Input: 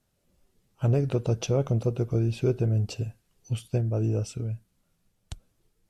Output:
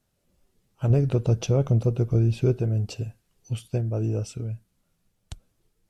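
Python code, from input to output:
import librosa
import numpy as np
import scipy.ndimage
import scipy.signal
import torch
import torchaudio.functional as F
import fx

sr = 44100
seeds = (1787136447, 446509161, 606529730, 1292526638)

y = fx.low_shelf(x, sr, hz=180.0, db=7.0, at=(0.9, 2.54))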